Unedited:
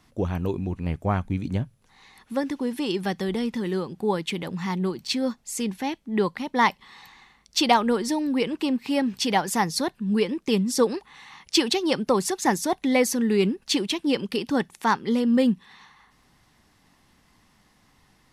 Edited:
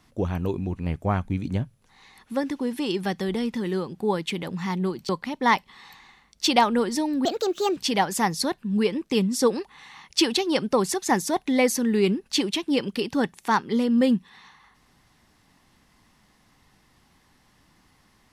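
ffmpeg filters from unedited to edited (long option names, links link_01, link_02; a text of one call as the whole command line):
ffmpeg -i in.wav -filter_complex "[0:a]asplit=4[link_01][link_02][link_03][link_04];[link_01]atrim=end=5.092[link_05];[link_02]atrim=start=6.218:end=8.384[link_06];[link_03]atrim=start=8.38:end=9.13,asetpts=PTS-STARTPTS,asetrate=63945,aresample=44100,atrim=end_sample=22810,asetpts=PTS-STARTPTS[link_07];[link_04]atrim=start=9.126[link_08];[link_05][link_06]acrossfade=duration=0.004:curve1=hsin:curve2=hsin[link_09];[link_09][link_07]acrossfade=duration=0.004:curve1=hsin:curve2=hsin[link_10];[link_10][link_08]acrossfade=duration=0.004:curve1=hsin:curve2=hsin" out.wav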